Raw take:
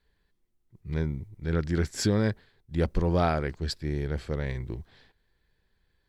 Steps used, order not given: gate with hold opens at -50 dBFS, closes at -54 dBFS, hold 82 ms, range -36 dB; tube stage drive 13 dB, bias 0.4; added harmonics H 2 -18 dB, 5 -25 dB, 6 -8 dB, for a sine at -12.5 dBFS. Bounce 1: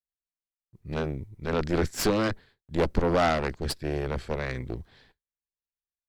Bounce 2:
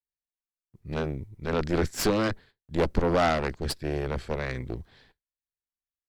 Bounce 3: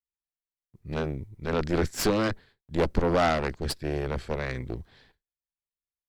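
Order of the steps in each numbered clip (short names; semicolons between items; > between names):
tube stage > added harmonics > gate with hold; tube stage > gate with hold > added harmonics; gate with hold > tube stage > added harmonics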